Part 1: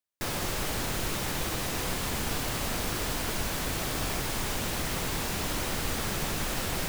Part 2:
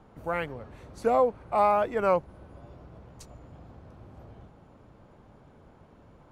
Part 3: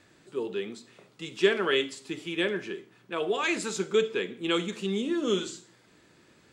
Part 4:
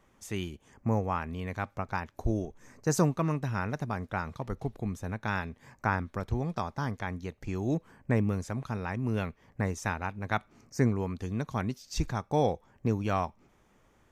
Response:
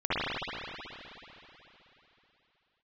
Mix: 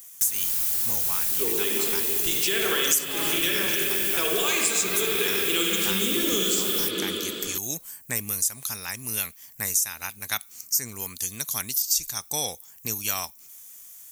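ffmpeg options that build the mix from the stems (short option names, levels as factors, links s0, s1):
-filter_complex "[0:a]volume=0.237[s0];[1:a]adelay=1550,volume=0.237[s1];[2:a]equalizer=f=890:t=o:w=0.77:g=-2.5,alimiter=limit=0.112:level=0:latency=1,adelay=1050,volume=1.33,asplit=2[s2][s3];[s3]volume=0.299[s4];[3:a]crystalizer=i=9.5:c=0,volume=0.282[s5];[4:a]atrim=start_sample=2205[s6];[s4][s6]afir=irnorm=-1:irlink=0[s7];[s0][s1][s2][s5][s7]amix=inputs=5:normalize=0,highshelf=f=8000:g=11.5,crystalizer=i=6:c=0,acompressor=threshold=0.0891:ratio=6"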